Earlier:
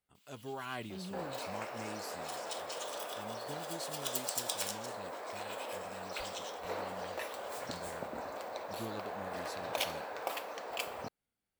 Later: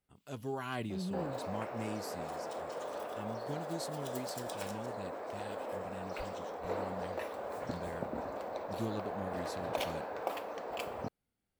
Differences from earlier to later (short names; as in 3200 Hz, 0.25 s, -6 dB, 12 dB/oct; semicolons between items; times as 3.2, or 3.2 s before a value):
first sound -12.0 dB; second sound: add high shelf 2100 Hz -8 dB; master: add low shelf 490 Hz +7.5 dB